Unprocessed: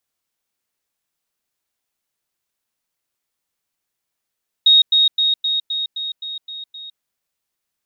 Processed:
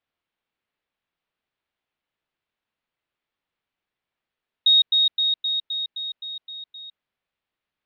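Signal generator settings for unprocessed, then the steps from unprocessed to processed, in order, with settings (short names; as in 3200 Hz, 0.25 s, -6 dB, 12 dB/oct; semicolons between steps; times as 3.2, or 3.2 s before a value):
level ladder 3750 Hz -7.5 dBFS, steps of -3 dB, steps 9, 0.16 s 0.10 s
LPF 3500 Hz 24 dB/oct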